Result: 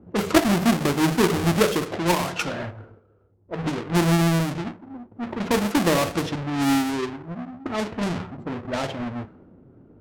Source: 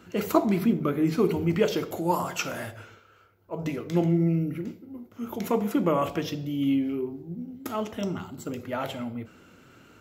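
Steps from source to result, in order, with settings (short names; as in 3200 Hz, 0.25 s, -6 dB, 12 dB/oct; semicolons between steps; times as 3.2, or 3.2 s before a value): half-waves squared off; low-pass opened by the level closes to 430 Hz, open at -20 dBFS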